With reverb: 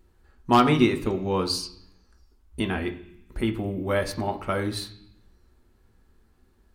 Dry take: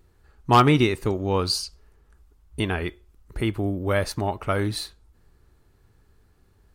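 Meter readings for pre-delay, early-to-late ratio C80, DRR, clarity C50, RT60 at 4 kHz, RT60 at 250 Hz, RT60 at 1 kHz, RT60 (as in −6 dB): 3 ms, 16.0 dB, 5.0 dB, 13.5 dB, 1.1 s, 0.95 s, 0.70 s, 0.70 s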